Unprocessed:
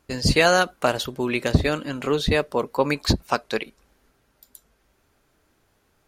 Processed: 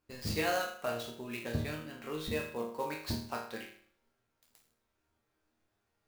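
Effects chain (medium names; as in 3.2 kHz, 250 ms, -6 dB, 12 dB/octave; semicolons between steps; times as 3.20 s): chord resonator D#2 sus4, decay 0.55 s; sampling jitter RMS 0.02 ms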